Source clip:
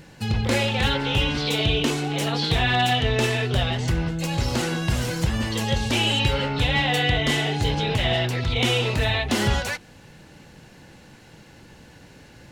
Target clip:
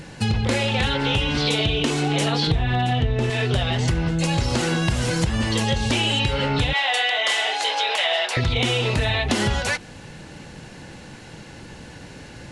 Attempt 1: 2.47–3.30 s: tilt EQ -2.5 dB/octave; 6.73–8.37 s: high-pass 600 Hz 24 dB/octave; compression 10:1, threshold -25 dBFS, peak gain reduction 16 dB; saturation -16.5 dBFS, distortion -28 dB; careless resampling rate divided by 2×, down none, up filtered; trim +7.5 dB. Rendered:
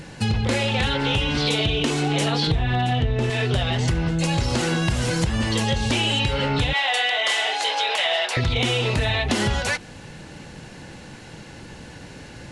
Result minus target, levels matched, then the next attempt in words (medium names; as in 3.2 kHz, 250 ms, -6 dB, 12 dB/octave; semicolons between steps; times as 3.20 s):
saturation: distortion +18 dB
2.47–3.30 s: tilt EQ -2.5 dB/octave; 6.73–8.37 s: high-pass 600 Hz 24 dB/octave; compression 10:1, threshold -25 dBFS, peak gain reduction 16 dB; saturation -7 dBFS, distortion -45 dB; careless resampling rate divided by 2×, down none, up filtered; trim +7.5 dB